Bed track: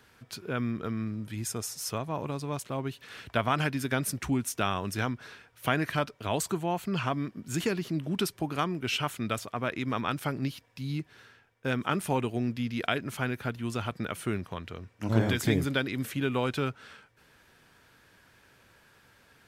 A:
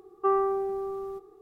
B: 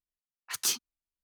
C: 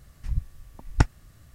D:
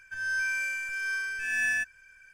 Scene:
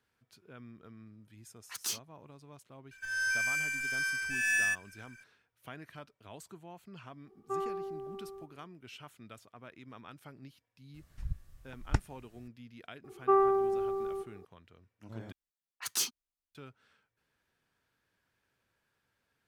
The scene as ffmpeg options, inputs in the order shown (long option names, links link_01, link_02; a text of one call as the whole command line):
ffmpeg -i bed.wav -i cue0.wav -i cue1.wav -i cue2.wav -i cue3.wav -filter_complex "[2:a]asplit=2[link_01][link_02];[1:a]asplit=2[link_03][link_04];[0:a]volume=-19.5dB[link_05];[4:a]highshelf=frequency=2700:gain=9.5[link_06];[link_05]asplit=2[link_07][link_08];[link_07]atrim=end=15.324[link_09];[link_02]atrim=end=1.23,asetpts=PTS-STARTPTS,volume=-3dB[link_10];[link_08]atrim=start=16.546[link_11];[link_01]atrim=end=1.23,asetpts=PTS-STARTPTS,volume=-7dB,afade=type=in:duration=0.004:curve=hsin,afade=type=out:start_time=1.226:duration=0.004:curve=hsin,adelay=1210[link_12];[link_06]atrim=end=2.33,asetpts=PTS-STARTPTS,volume=-4.5dB,afade=type=in:duration=0.004:curve=hsin,afade=type=out:start_time=2.326:duration=0.004:curve=hsin,adelay=2910[link_13];[link_03]atrim=end=1.41,asetpts=PTS-STARTPTS,volume=-11dB,afade=type=in:duration=0.004:curve=hsin,afade=type=out:start_time=1.406:duration=0.004:curve=hsin,adelay=7260[link_14];[3:a]atrim=end=1.54,asetpts=PTS-STARTPTS,volume=-9.5dB,afade=type=in:duration=0.004:curve=hsin,afade=type=out:start_time=1.536:duration=0.004:curve=hsin,adelay=10940[link_15];[link_04]atrim=end=1.41,asetpts=PTS-STARTPTS,volume=-0.5dB,afade=type=in:duration=0.004:curve=hsin,afade=type=out:start_time=1.406:duration=0.004:curve=hsin,adelay=13040[link_16];[link_09][link_10]acrossfade=duration=0.004:curve1=hsin:curve2=hsin[link_17];[link_17][link_11]acrossfade=duration=0.004:curve1=hsin:curve2=hsin[link_18];[link_18][link_12][link_13][link_14][link_15][link_16]amix=inputs=6:normalize=0" out.wav